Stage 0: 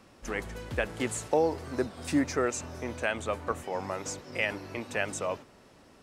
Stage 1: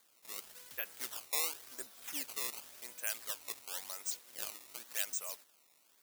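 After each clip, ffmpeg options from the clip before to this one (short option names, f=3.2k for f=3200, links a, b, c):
-af "acrusher=samples=16:mix=1:aa=0.000001:lfo=1:lforange=25.6:lforate=0.92,aderivative"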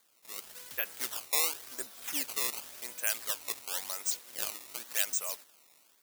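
-af "dynaudnorm=f=290:g=3:m=6.5dB"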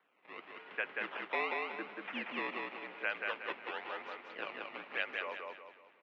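-filter_complex "[0:a]asplit=2[a][b];[b]aecho=0:1:184|368|552|736|920:0.708|0.269|0.102|0.0388|0.0148[c];[a][c]amix=inputs=2:normalize=0,highpass=f=260:t=q:w=0.5412,highpass=f=260:t=q:w=1.307,lowpass=f=2.7k:t=q:w=0.5176,lowpass=f=2.7k:t=q:w=0.7071,lowpass=f=2.7k:t=q:w=1.932,afreqshift=-50,volume=2.5dB"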